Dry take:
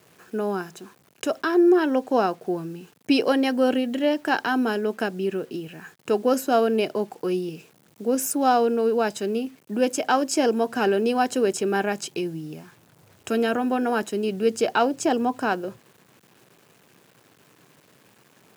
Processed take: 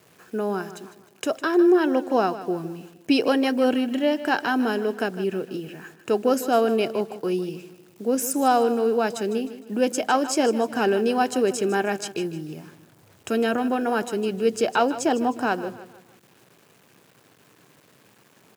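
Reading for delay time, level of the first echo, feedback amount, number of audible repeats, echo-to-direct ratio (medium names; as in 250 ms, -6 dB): 154 ms, -14.0 dB, 41%, 3, -13.0 dB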